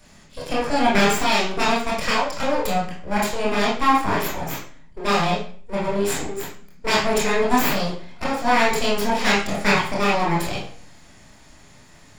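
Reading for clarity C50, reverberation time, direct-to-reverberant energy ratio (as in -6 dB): 4.0 dB, 0.50 s, -5.5 dB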